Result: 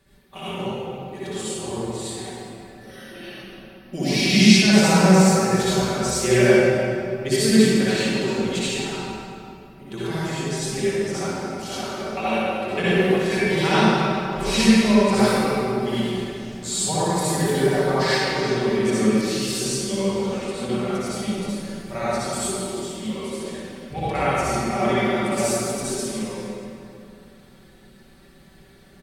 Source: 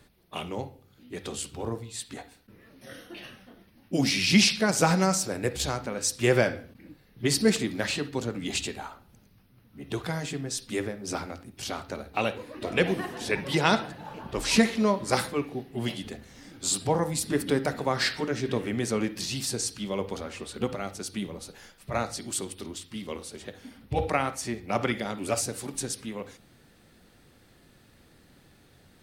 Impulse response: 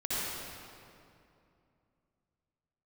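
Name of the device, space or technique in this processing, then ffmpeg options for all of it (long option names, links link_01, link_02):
stairwell: -filter_complex "[0:a]aecho=1:1:5.2:0.65[link_01];[1:a]atrim=start_sample=2205[link_02];[link_01][link_02]afir=irnorm=-1:irlink=0,volume=-2.5dB"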